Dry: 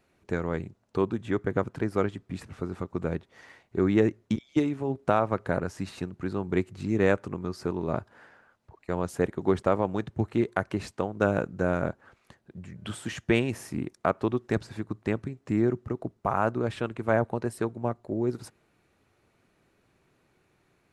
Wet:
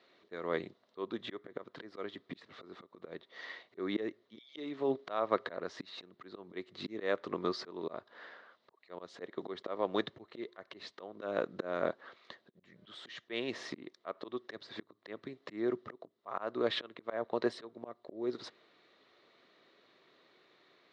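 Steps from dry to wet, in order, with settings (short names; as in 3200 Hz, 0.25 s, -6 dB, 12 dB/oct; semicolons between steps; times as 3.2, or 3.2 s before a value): bell 2000 Hz +6 dB 2.3 oct; auto swell 0.416 s; speaker cabinet 390–4700 Hz, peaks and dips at 840 Hz -9 dB, 1500 Hz -9 dB, 2500 Hz -10 dB, 3800 Hz +7 dB; gain +4.5 dB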